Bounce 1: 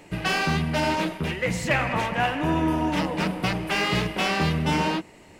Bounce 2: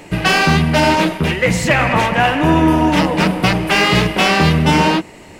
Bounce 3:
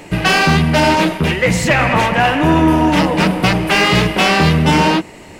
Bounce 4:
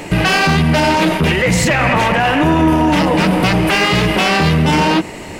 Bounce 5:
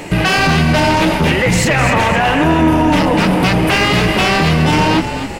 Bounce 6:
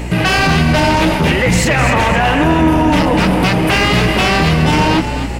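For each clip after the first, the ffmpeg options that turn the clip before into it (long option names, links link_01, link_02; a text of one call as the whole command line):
ffmpeg -i in.wav -af "alimiter=level_in=12dB:limit=-1dB:release=50:level=0:latency=1,volume=-1dB" out.wav
ffmpeg -i in.wav -af "acontrast=21,volume=-3dB" out.wav
ffmpeg -i in.wav -af "alimiter=level_in=12.5dB:limit=-1dB:release=50:level=0:latency=1,volume=-5dB" out.wav
ffmpeg -i in.wav -filter_complex "[0:a]asplit=6[link_01][link_02][link_03][link_04][link_05][link_06];[link_02]adelay=256,afreqshift=-48,volume=-9dB[link_07];[link_03]adelay=512,afreqshift=-96,volume=-16.7dB[link_08];[link_04]adelay=768,afreqshift=-144,volume=-24.5dB[link_09];[link_05]adelay=1024,afreqshift=-192,volume=-32.2dB[link_10];[link_06]adelay=1280,afreqshift=-240,volume=-40dB[link_11];[link_01][link_07][link_08][link_09][link_10][link_11]amix=inputs=6:normalize=0" out.wav
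ffmpeg -i in.wav -af "aeval=exprs='val(0)+0.0794*(sin(2*PI*60*n/s)+sin(2*PI*2*60*n/s)/2+sin(2*PI*3*60*n/s)/3+sin(2*PI*4*60*n/s)/4+sin(2*PI*5*60*n/s)/5)':channel_layout=same" out.wav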